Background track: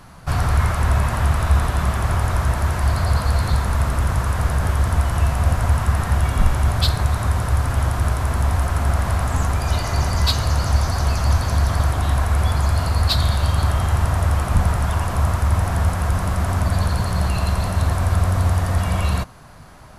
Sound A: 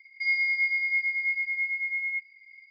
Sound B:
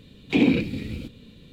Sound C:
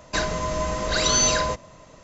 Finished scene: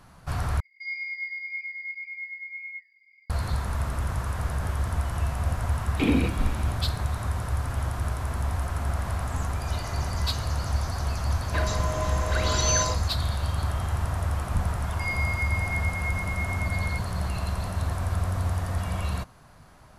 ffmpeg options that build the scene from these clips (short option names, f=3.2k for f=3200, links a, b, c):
-filter_complex "[1:a]asplit=2[a][b];[0:a]volume=-9dB[c];[a]flanger=delay=4.6:depth=2.5:regen=82:speed=1.9:shape=triangular[d];[2:a]acrusher=bits=10:mix=0:aa=0.000001[e];[3:a]acrossover=split=260|3500[f][g][h];[f]adelay=70[i];[h]adelay=130[j];[i][g][j]amix=inputs=3:normalize=0[k];[b]equalizer=f=3.6k:w=1.5:g=7.5[l];[c]asplit=2[m][n];[m]atrim=end=0.604[o];[d]atrim=end=2.7,asetpts=PTS-STARTPTS,volume=-3.5dB[p];[n]atrim=start=3.296[q];[e]atrim=end=1.52,asetpts=PTS-STARTPTS,volume=-4.5dB,afade=t=in:d=0.004:c=hsin,afade=t=out:st=1.516:d=0.004:c=hsin,adelay=5670[r];[k]atrim=end=2.03,asetpts=PTS-STARTPTS,volume=-4dB,afade=t=in:d=0.004:c=hsin,afade=t=out:st=2.026:d=0.004:c=hsin,adelay=11400[s];[l]atrim=end=2.7,asetpts=PTS-STARTPTS,volume=-8dB,afade=t=in:d=0.004:c=hsin,afade=t=out:st=2.696:d=0.004:c=hsin,adelay=14790[t];[o][p]acrossfade=d=0.004:c1=hsin:c2=hsin[u];[u][q]acrossfade=d=0.004:c1=hsin:c2=hsin[v];[v][r][s][t]amix=inputs=4:normalize=0"